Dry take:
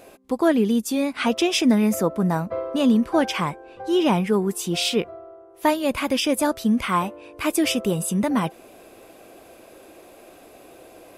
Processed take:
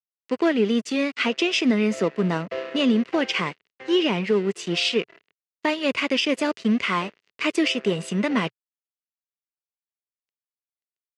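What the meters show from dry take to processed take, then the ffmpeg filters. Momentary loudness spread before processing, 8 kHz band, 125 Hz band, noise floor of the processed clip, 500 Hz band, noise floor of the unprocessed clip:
8 LU, -8.0 dB, -3.5 dB, under -85 dBFS, -1.0 dB, -48 dBFS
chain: -af "aeval=exprs='sgn(val(0))*max(abs(val(0))-0.0178,0)':c=same,highpass=f=110:w=0.5412,highpass=f=110:w=1.3066,equalizer=f=120:t=q:w=4:g=-8,equalizer=f=420:t=q:w=4:g=6,equalizer=f=810:t=q:w=4:g=-6,equalizer=f=2000:t=q:w=4:g=8,equalizer=f=2800:t=q:w=4:g=9,equalizer=f=4500:t=q:w=4:g=4,lowpass=f=7000:w=0.5412,lowpass=f=7000:w=1.3066,alimiter=limit=0.266:level=0:latency=1:release=188"

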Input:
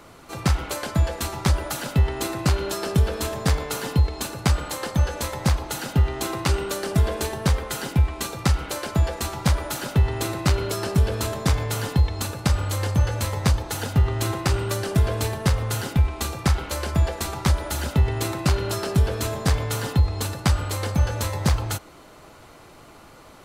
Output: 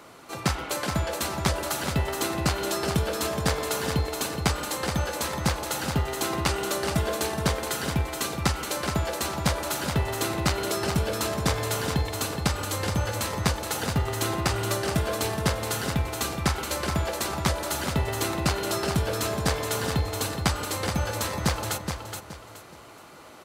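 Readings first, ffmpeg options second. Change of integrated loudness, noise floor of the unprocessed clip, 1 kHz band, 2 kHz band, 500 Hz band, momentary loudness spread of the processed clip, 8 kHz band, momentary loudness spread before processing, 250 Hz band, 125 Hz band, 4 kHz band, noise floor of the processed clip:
-3.0 dB, -47 dBFS, +0.5 dB, +1.0 dB, 0.0 dB, 3 LU, +1.0 dB, 3 LU, -2.0 dB, -7.0 dB, +1.0 dB, -46 dBFS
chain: -af "highpass=f=220:p=1,aecho=1:1:422|844|1266|1688:0.473|0.137|0.0398|0.0115"

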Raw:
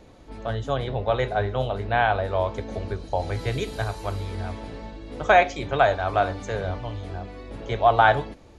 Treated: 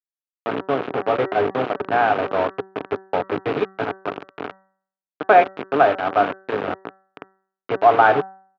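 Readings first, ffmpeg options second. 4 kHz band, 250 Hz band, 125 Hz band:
-2.0 dB, +5.5 dB, -9.5 dB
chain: -af "aeval=exprs='val(0)+0.00631*sin(2*PI*950*n/s)':c=same,aresample=16000,acrusher=bits=3:mix=0:aa=0.000001,aresample=44100,highpass=f=120:w=0.5412,highpass=f=120:w=1.3066,equalizer=f=120:t=q:w=4:g=-5,equalizer=f=290:t=q:w=4:g=7,equalizer=f=420:t=q:w=4:g=9,equalizer=f=730:t=q:w=4:g=4,equalizer=f=1300:t=q:w=4:g=5,equalizer=f=2000:t=q:w=4:g=-4,lowpass=f=2700:w=0.5412,lowpass=f=2700:w=1.3066,bandreject=f=191.1:t=h:w=4,bandreject=f=382.2:t=h:w=4,bandreject=f=573.3:t=h:w=4,bandreject=f=764.4:t=h:w=4,bandreject=f=955.5:t=h:w=4,bandreject=f=1146.6:t=h:w=4,bandreject=f=1337.7:t=h:w=4,bandreject=f=1528.8:t=h:w=4,bandreject=f=1719.9:t=h:w=4,bandreject=f=1911:t=h:w=4"

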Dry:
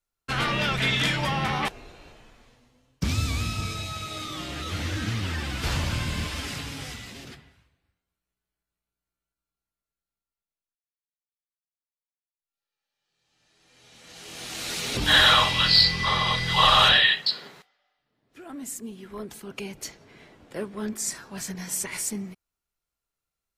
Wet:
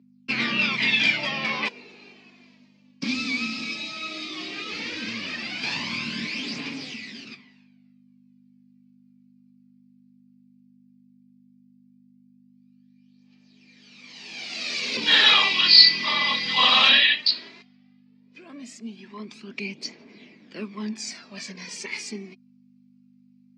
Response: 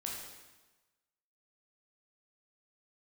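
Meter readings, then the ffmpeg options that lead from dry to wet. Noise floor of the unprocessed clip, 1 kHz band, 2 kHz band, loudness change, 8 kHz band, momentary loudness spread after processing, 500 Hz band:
under -85 dBFS, -4.0 dB, +2.5 dB, +2.5 dB, -7.0 dB, 23 LU, -4.5 dB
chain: -af "aphaser=in_gain=1:out_gain=1:delay=4:decay=0.52:speed=0.15:type=triangular,aeval=exprs='val(0)+0.00562*(sin(2*PI*50*n/s)+sin(2*PI*2*50*n/s)/2+sin(2*PI*3*50*n/s)/3+sin(2*PI*4*50*n/s)/4+sin(2*PI*5*50*n/s)/5)':c=same,highpass=f=200:w=0.5412,highpass=f=200:w=1.3066,equalizer=f=230:t=q:w=4:g=8,equalizer=f=540:t=q:w=4:g=-4,equalizer=f=780:t=q:w=4:g=-5,equalizer=f=1400:t=q:w=4:g=-7,equalizer=f=2400:t=q:w=4:g=10,equalizer=f=4700:t=q:w=4:g=8,lowpass=f=5800:w=0.5412,lowpass=f=5800:w=1.3066,volume=0.794"

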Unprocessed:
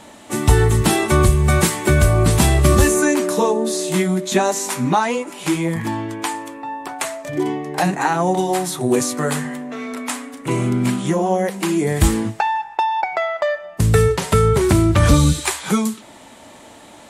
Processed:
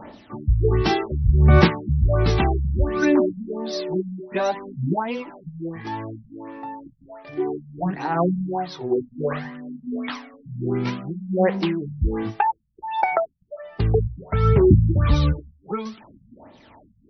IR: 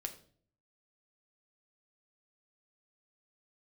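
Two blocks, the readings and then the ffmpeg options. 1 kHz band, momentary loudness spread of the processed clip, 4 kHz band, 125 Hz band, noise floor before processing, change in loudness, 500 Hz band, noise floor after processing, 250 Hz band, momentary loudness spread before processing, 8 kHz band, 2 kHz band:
-5.5 dB, 18 LU, -8.0 dB, -3.5 dB, -43 dBFS, -4.5 dB, -4.5 dB, -56 dBFS, -5.0 dB, 12 LU, under -25 dB, -7.5 dB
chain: -af "aphaser=in_gain=1:out_gain=1:delay=2.6:decay=0.56:speed=0.61:type=sinusoidal,tremolo=f=1.3:d=0.53,afftfilt=real='re*lt(b*sr/1024,210*pow(6100/210,0.5+0.5*sin(2*PI*1.4*pts/sr)))':imag='im*lt(b*sr/1024,210*pow(6100/210,0.5+0.5*sin(2*PI*1.4*pts/sr)))':win_size=1024:overlap=0.75,volume=0.668"

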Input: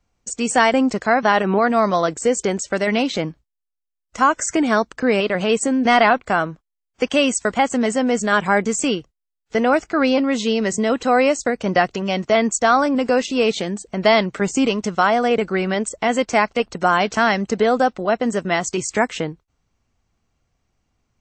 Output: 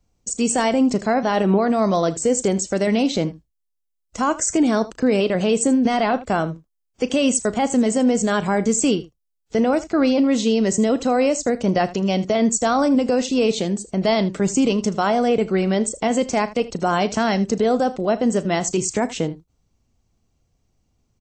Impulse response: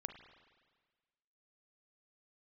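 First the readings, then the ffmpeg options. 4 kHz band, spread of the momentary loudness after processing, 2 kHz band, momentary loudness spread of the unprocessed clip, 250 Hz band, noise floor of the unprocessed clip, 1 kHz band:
-3.0 dB, 5 LU, -8.0 dB, 6 LU, +2.0 dB, -80 dBFS, -4.5 dB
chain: -filter_complex "[0:a]equalizer=f=1600:t=o:w=2.1:g=-10.5,alimiter=limit=0.211:level=0:latency=1:release=13,asplit=2[s0][s1];[s1]aecho=0:1:36|79:0.141|0.133[s2];[s0][s2]amix=inputs=2:normalize=0,volume=1.5"

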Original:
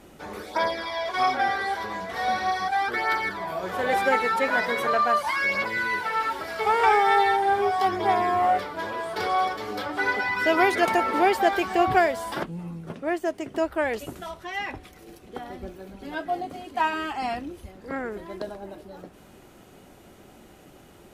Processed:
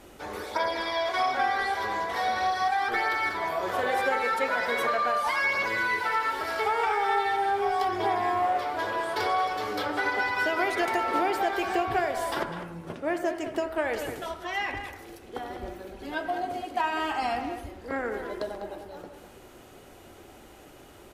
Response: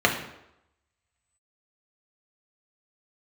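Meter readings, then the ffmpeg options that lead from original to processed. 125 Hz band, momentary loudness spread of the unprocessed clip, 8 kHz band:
-4.0 dB, 17 LU, -1.0 dB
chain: -filter_complex "[0:a]equalizer=f=180:t=o:w=0.77:g=-8.5,acompressor=threshold=0.0562:ratio=5,bandreject=f=64.26:t=h:w=4,bandreject=f=128.52:t=h:w=4,bandreject=f=192.78:t=h:w=4,bandreject=f=257.04:t=h:w=4,bandreject=f=321.3:t=h:w=4,bandreject=f=385.56:t=h:w=4,bandreject=f=449.82:t=h:w=4,bandreject=f=514.08:t=h:w=4,bandreject=f=578.34:t=h:w=4,bandreject=f=642.6:t=h:w=4,bandreject=f=706.86:t=h:w=4,bandreject=f=771.12:t=h:w=4,bandreject=f=835.38:t=h:w=4,bandreject=f=899.64:t=h:w=4,bandreject=f=963.9:t=h:w=4,bandreject=f=1028.16:t=h:w=4,bandreject=f=1092.42:t=h:w=4,bandreject=f=1156.68:t=h:w=4,bandreject=f=1220.94:t=h:w=4,bandreject=f=1285.2:t=h:w=4,bandreject=f=1349.46:t=h:w=4,bandreject=f=1413.72:t=h:w=4,bandreject=f=1477.98:t=h:w=4,bandreject=f=1542.24:t=h:w=4,bandreject=f=1606.5:t=h:w=4,bandreject=f=1670.76:t=h:w=4,bandreject=f=1735.02:t=h:w=4,bandreject=f=1799.28:t=h:w=4,bandreject=f=1863.54:t=h:w=4,bandreject=f=1927.8:t=h:w=4,bandreject=f=1992.06:t=h:w=4,bandreject=f=2056.32:t=h:w=4,bandreject=f=2120.58:t=h:w=4,bandreject=f=2184.84:t=h:w=4,bandreject=f=2249.1:t=h:w=4,bandreject=f=2313.36:t=h:w=4,bandreject=f=2377.62:t=h:w=4,bandreject=f=2441.88:t=h:w=4,bandreject=f=2506.14:t=h:w=4,asplit=2[s0][s1];[s1]adelay=200,highpass=300,lowpass=3400,asoftclip=type=hard:threshold=0.0501,volume=0.398[s2];[s0][s2]amix=inputs=2:normalize=0,asplit=2[s3][s4];[1:a]atrim=start_sample=2205,asetrate=31752,aresample=44100,adelay=85[s5];[s4][s5]afir=irnorm=-1:irlink=0,volume=0.0282[s6];[s3][s6]amix=inputs=2:normalize=0,volume=1.19"

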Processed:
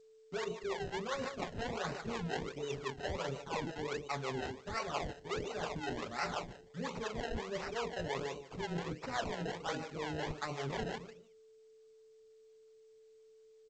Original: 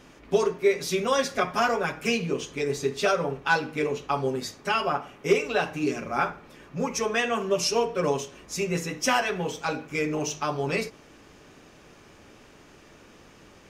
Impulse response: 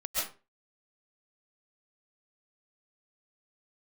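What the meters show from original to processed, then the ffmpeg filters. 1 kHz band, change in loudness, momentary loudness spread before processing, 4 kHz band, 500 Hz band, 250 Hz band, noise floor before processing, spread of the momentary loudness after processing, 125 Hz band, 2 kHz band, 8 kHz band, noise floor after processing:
-12.0 dB, -13.0 dB, 6 LU, -12.0 dB, -13.5 dB, -12.0 dB, -53 dBFS, 3 LU, -8.0 dB, -13.5 dB, -17.0 dB, -62 dBFS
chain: -filter_complex "[0:a]highshelf=f=4500:g=-5,agate=range=0.2:threshold=0.00501:ratio=16:detection=peak,afftdn=nr=22:nf=-44,asoftclip=type=tanh:threshold=0.224,asplit=2[s0][s1];[s1]adelay=149,lowpass=f=1900:p=1,volume=0.316,asplit=2[s2][s3];[s3]adelay=149,lowpass=f=1900:p=1,volume=0.28,asplit=2[s4][s5];[s5]adelay=149,lowpass=f=1900:p=1,volume=0.28[s6];[s0][s2][s4][s6]amix=inputs=4:normalize=0,acrusher=samples=26:mix=1:aa=0.000001:lfo=1:lforange=26:lforate=1.4,areverse,acompressor=threshold=0.0224:ratio=16,areverse,acrossover=split=430[s7][s8];[s7]aeval=exprs='val(0)*(1-0.7/2+0.7/2*cos(2*PI*5.7*n/s))':c=same[s9];[s8]aeval=exprs='val(0)*(1-0.7/2-0.7/2*cos(2*PI*5.7*n/s))':c=same[s10];[s9][s10]amix=inputs=2:normalize=0,aeval=exprs='val(0)+0.001*sin(2*PI*440*n/s)':c=same,equalizer=f=280:t=o:w=0.67:g=-4,volume=1.26" -ar 16000 -c:a g722

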